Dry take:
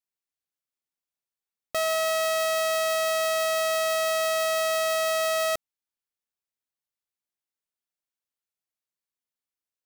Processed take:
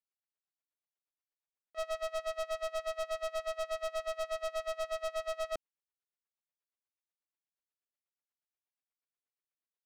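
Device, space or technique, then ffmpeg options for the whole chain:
helicopter radio: -af "highpass=300,lowpass=2700,aeval=exprs='val(0)*pow(10,-29*(0.5-0.5*cos(2*PI*8.3*n/s))/20)':channel_layout=same,asoftclip=type=hard:threshold=-32dB"

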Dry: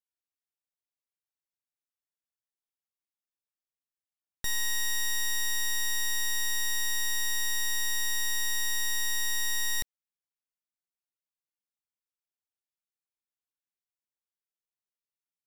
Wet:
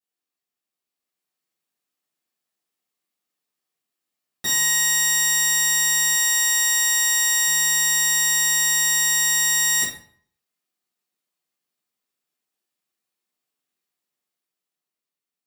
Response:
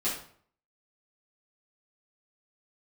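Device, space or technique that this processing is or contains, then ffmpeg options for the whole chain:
far laptop microphone: -filter_complex "[1:a]atrim=start_sample=2205[link_01];[0:a][link_01]afir=irnorm=-1:irlink=0,highpass=110,dynaudnorm=framelen=130:gausssize=17:maxgain=5dB,asettb=1/sr,asplit=3[link_02][link_03][link_04];[link_02]atrim=end=6.164[link_05];[link_03]atrim=start=6.16:end=7.48,asetpts=PTS-STARTPTS,afade=type=in:duration=0.004:curve=qsin,afade=type=out:start_time=1.316:duration=0.004:curve=qsin,highpass=250[link_06];[link_04]atrim=start=7.476[link_07];[link_05][link_06]acrossfade=duration=0.004:curve1=hsin:curve2=qsin[link_08];[link_08][link_07]acrossfade=duration=0.004:curve1=qsin:curve2=hsin"

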